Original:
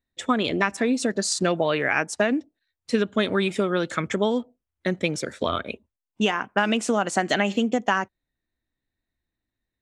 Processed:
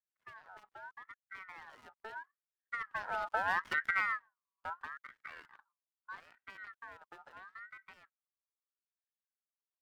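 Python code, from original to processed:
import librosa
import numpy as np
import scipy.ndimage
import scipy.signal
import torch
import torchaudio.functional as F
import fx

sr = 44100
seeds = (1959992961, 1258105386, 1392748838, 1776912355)

y = fx.dead_time(x, sr, dead_ms=0.26)
y = fx.doppler_pass(y, sr, speed_mps=24, closest_m=5.6, pass_at_s=3.67)
y = scipy.signal.sosfilt(scipy.signal.butter(2, 53.0, 'highpass', fs=sr, output='sos'), y)
y = fx.tilt_eq(y, sr, slope=-3.5)
y = fx.ring_lfo(y, sr, carrier_hz=1400.0, swing_pct=25, hz=0.77)
y = y * 10.0 ** (-8.0 / 20.0)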